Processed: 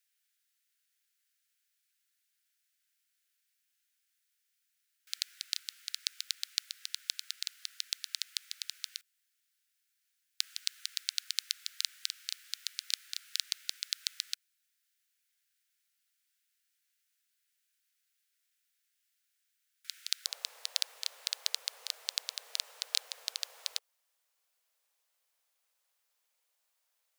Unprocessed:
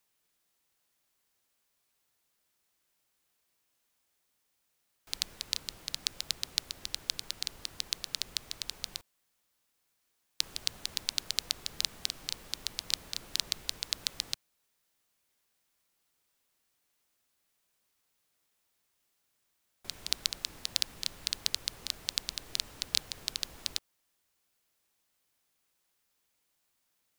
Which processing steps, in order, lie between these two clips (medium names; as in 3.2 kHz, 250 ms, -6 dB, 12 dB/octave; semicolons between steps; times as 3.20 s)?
steep high-pass 1.4 kHz 72 dB/octave, from 20.25 s 460 Hz; trim -2 dB